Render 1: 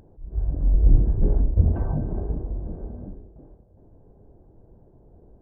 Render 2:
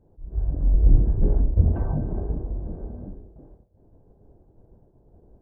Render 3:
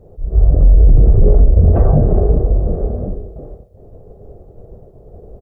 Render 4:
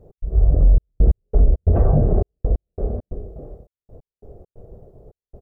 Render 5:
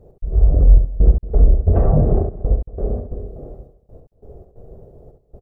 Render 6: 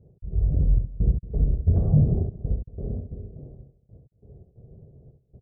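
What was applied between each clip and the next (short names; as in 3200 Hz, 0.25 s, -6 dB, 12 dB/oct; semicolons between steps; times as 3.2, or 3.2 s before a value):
expander -47 dBFS
bell 410 Hz +9 dB 0.85 oct; comb 1.6 ms, depth 56%; maximiser +13.5 dB; gain -1 dB
step gate "x.xxxxx..x..x" 135 bpm -60 dB; gain -4.5 dB
tapped delay 67/228 ms -6/-16.5 dB; gain +1 dB
band-pass 130 Hz, Q 1.4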